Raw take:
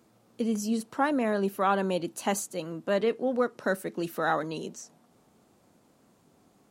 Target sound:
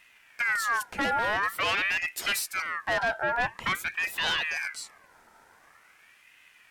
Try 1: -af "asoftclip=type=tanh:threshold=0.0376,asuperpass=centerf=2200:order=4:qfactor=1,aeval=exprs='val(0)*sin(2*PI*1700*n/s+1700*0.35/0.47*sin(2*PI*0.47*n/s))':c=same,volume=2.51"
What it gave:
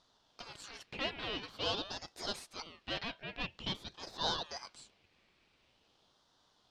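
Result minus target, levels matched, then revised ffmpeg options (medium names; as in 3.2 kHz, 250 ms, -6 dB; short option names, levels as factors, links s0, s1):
2 kHz band -7.0 dB
-af "asoftclip=type=tanh:threshold=0.0376,aeval=exprs='val(0)*sin(2*PI*1700*n/s+1700*0.35/0.47*sin(2*PI*0.47*n/s))':c=same,volume=2.51"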